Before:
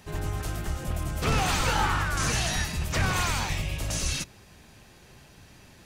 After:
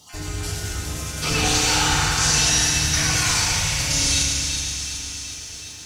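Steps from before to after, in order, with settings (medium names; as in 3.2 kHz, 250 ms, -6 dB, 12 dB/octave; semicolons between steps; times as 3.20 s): random holes in the spectrogram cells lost 20%; 0.84–1.31 s: high-pass 130 Hz 24 dB/octave; FDN reverb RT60 2.5 s, low-frequency decay 1.4×, high-frequency decay 0.7×, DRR -6 dB; bit crusher 10-bit; peaking EQ 5.7 kHz +14 dB 2.3 oct; on a send: feedback echo behind a high-pass 374 ms, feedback 62%, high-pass 1.9 kHz, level -7 dB; on the sum: bit-crushed delay 501 ms, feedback 55%, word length 7-bit, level -14 dB; trim -5.5 dB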